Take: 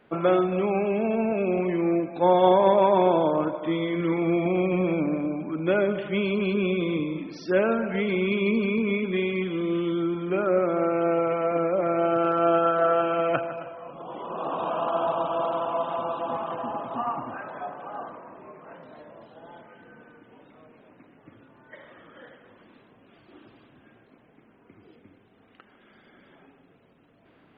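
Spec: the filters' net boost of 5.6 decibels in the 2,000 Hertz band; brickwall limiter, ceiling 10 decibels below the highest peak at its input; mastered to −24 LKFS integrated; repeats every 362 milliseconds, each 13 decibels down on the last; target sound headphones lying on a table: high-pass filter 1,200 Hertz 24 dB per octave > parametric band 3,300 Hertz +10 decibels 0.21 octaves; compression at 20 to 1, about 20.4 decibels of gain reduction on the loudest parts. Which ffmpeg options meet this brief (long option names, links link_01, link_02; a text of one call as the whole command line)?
ffmpeg -i in.wav -af "equalizer=frequency=2000:width_type=o:gain=7,acompressor=threshold=-34dB:ratio=20,alimiter=level_in=8.5dB:limit=-24dB:level=0:latency=1,volume=-8.5dB,highpass=frequency=1200:width=0.5412,highpass=frequency=1200:width=1.3066,equalizer=frequency=3300:width_type=o:width=0.21:gain=10,aecho=1:1:362|724|1086:0.224|0.0493|0.0108,volume=23dB" out.wav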